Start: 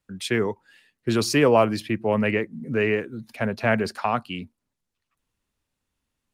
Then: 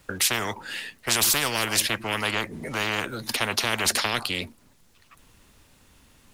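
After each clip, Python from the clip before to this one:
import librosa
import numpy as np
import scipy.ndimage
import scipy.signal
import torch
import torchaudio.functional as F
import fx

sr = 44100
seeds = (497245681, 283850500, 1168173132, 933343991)

y = fx.spectral_comp(x, sr, ratio=10.0)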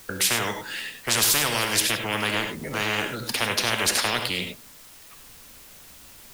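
y = fx.rev_gated(x, sr, seeds[0], gate_ms=120, shape='rising', drr_db=5.5)
y = fx.quant_dither(y, sr, seeds[1], bits=8, dither='triangular')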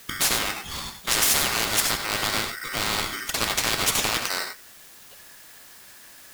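y = x * np.sign(np.sin(2.0 * np.pi * 1700.0 * np.arange(len(x)) / sr))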